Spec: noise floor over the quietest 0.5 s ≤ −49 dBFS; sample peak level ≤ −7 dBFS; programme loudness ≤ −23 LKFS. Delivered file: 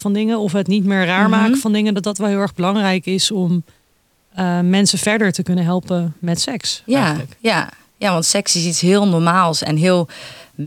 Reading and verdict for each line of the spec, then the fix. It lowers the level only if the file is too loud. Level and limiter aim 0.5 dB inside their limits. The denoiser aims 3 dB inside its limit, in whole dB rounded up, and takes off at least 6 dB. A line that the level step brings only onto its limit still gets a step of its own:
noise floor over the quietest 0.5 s −60 dBFS: in spec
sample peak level −2.0 dBFS: out of spec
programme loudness −16.5 LKFS: out of spec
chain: level −7 dB

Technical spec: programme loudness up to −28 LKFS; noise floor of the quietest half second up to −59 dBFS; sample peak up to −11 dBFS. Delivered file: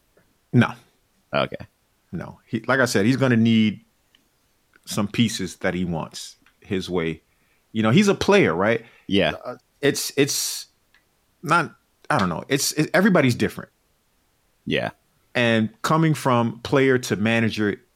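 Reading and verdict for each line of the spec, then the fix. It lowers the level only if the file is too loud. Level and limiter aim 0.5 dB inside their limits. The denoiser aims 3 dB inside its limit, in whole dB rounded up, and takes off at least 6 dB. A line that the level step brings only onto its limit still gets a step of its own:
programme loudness −21.5 LKFS: out of spec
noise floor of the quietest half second −66 dBFS: in spec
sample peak −6.0 dBFS: out of spec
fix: level −7 dB

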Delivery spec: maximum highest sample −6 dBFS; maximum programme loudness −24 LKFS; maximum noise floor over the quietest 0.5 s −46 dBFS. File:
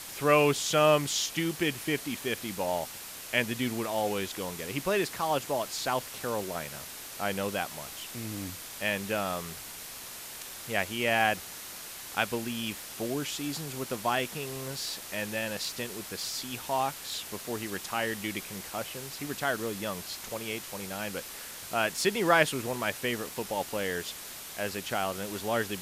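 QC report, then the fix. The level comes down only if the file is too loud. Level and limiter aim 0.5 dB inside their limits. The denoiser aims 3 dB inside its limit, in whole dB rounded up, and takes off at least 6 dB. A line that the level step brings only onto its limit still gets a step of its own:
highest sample −9.5 dBFS: in spec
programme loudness −31.5 LKFS: in spec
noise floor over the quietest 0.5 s −43 dBFS: out of spec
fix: broadband denoise 6 dB, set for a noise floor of −43 dBFS

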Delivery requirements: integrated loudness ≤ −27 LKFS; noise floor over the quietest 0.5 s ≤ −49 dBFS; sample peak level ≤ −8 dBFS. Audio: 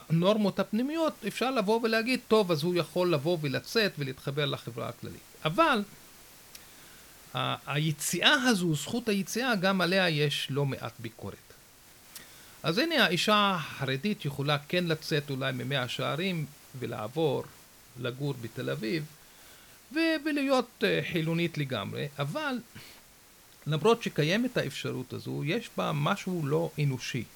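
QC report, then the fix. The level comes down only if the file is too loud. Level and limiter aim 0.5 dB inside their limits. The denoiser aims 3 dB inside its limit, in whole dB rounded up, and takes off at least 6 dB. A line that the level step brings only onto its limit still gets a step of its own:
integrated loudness −29.0 LKFS: in spec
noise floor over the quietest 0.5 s −56 dBFS: in spec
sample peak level −8.5 dBFS: in spec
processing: no processing needed

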